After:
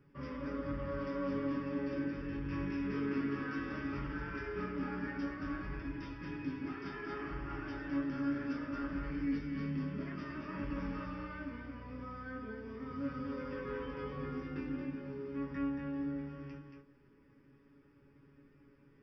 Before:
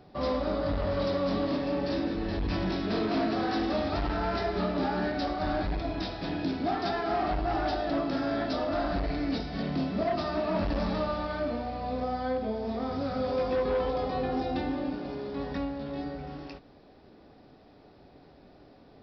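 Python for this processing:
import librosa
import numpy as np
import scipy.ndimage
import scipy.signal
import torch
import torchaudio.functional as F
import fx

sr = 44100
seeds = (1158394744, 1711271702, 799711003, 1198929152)

y = fx.fixed_phaser(x, sr, hz=1700.0, stages=4)
y = fx.comb_fb(y, sr, f0_hz=140.0, decay_s=0.16, harmonics='all', damping=0.0, mix_pct=90)
y = y + 10.0 ** (-5.0 / 20.0) * np.pad(y, (int(228 * sr / 1000.0), 0))[:len(y)]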